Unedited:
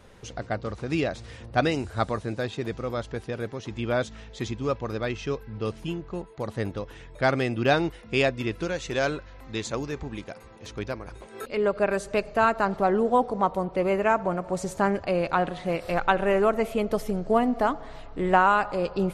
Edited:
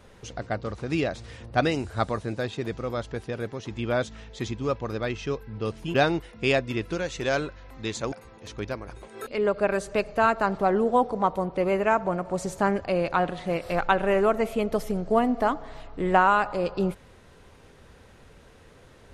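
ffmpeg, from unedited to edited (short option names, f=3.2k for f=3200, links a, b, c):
-filter_complex "[0:a]asplit=3[a][b][c];[a]atrim=end=5.942[d];[b]atrim=start=7.638:end=9.822[e];[c]atrim=start=10.308[f];[d][e]acrossfade=d=0.004:c1=hsin:c2=hsin[g];[g][f]acrossfade=d=0.004:c1=hsin:c2=hsin"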